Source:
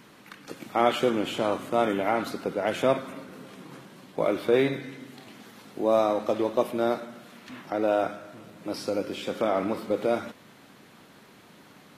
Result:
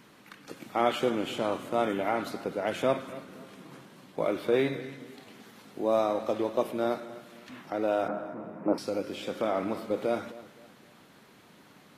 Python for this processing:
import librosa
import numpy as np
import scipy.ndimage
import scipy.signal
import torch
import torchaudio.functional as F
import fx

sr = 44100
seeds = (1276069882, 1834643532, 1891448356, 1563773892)

y = fx.curve_eq(x, sr, hz=(110.0, 190.0, 940.0, 2500.0, 3700.0, 12000.0), db=(0, 9, 11, -5, -27, -18), at=(8.08, 8.78))
y = fx.echo_feedback(y, sr, ms=259, feedback_pct=33, wet_db=-18.0)
y = y * librosa.db_to_amplitude(-3.5)